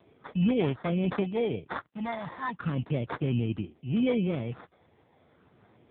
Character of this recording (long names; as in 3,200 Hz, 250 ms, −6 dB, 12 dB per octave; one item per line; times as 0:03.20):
phaser sweep stages 12, 0.35 Hz, lowest notch 420–3,000 Hz
aliases and images of a low sample rate 2,800 Hz, jitter 0%
AMR narrowband